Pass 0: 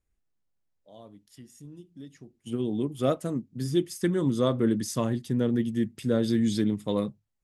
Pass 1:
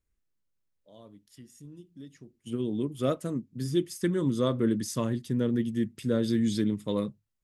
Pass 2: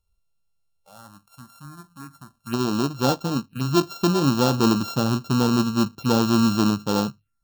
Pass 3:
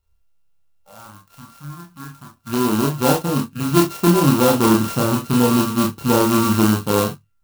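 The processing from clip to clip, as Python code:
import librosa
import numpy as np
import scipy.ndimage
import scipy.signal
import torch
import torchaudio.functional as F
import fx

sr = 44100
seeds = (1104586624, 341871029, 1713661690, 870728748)

y1 = fx.peak_eq(x, sr, hz=750.0, db=-7.5, octaves=0.33)
y1 = y1 * librosa.db_to_amplitude(-1.5)
y2 = np.r_[np.sort(y1[:len(y1) // 32 * 32].reshape(-1, 32), axis=1).ravel(), y1[len(y1) // 32 * 32:]]
y2 = fx.env_phaser(y2, sr, low_hz=290.0, high_hz=2100.0, full_db=-30.5)
y2 = y2 * librosa.db_to_amplitude(8.0)
y3 = fx.doubler(y2, sr, ms=27.0, db=-6.5)
y3 = fx.room_early_taps(y3, sr, ms=(29, 41), db=(-4.0, -5.5))
y3 = fx.clock_jitter(y3, sr, seeds[0], jitter_ms=0.048)
y3 = y3 * librosa.db_to_amplitude(2.5)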